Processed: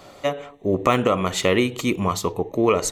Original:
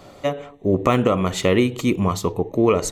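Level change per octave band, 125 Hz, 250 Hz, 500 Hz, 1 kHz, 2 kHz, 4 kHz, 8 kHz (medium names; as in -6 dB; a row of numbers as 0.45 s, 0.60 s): -4.5 dB, -3.0 dB, -1.5 dB, +1.0 dB, +1.5 dB, +2.0 dB, +2.0 dB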